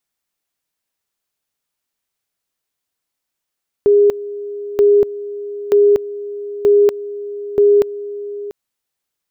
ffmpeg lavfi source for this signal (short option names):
-f lavfi -i "aevalsrc='pow(10,(-7-16.5*gte(mod(t,0.93),0.24))/20)*sin(2*PI*409*t)':d=4.65:s=44100"